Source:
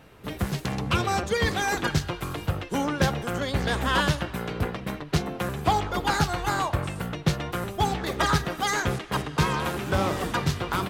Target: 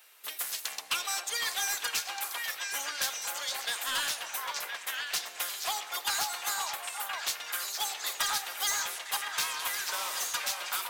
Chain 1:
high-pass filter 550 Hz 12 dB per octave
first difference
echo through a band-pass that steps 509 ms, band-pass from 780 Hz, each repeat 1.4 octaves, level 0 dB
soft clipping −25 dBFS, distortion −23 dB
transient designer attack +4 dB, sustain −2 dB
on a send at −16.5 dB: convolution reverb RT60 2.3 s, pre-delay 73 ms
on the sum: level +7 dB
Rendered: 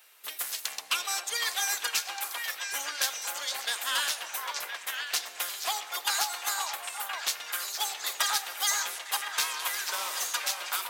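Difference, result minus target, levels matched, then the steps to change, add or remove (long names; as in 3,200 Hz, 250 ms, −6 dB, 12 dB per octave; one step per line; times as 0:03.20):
soft clipping: distortion −10 dB
change: soft clipping −32.5 dBFS, distortion −13 dB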